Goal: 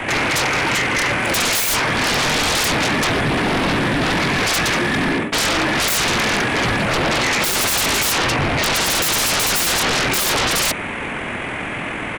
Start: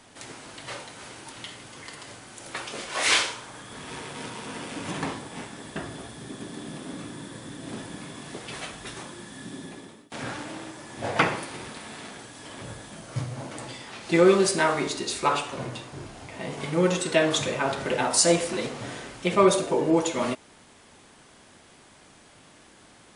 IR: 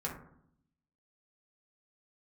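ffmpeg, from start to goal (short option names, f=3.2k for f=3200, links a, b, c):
-filter_complex "[0:a]highshelf=f=3.4k:t=q:w=3:g=-13,acrossover=split=360|1100|3600[a][b][c][d];[b]acompressor=threshold=-37dB:ratio=6[e];[a][e][c][d]amix=inputs=4:normalize=0,asoftclip=type=hard:threshold=-21dB,atempo=1.9,aeval=exprs='0.0891*sin(PI/2*7.94*val(0)/0.0891)':c=same,volume=6dB"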